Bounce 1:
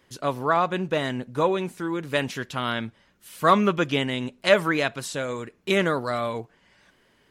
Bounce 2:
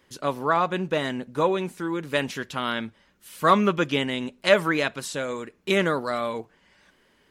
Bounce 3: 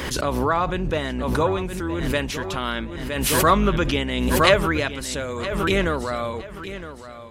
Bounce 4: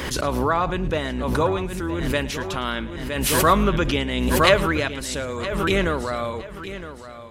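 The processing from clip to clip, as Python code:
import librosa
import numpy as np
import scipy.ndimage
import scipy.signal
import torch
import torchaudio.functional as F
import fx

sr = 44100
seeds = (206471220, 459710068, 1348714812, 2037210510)

y1 = fx.peak_eq(x, sr, hz=120.0, db=-9.0, octaves=0.24)
y1 = fx.notch(y1, sr, hz=690.0, q=20.0)
y2 = fx.octave_divider(y1, sr, octaves=2, level_db=-1.0)
y2 = fx.echo_feedback(y2, sr, ms=964, feedback_pct=33, wet_db=-13.0)
y2 = fx.pre_swell(y2, sr, db_per_s=32.0)
y3 = fx.echo_feedback(y2, sr, ms=109, feedback_pct=27, wet_db=-19.0)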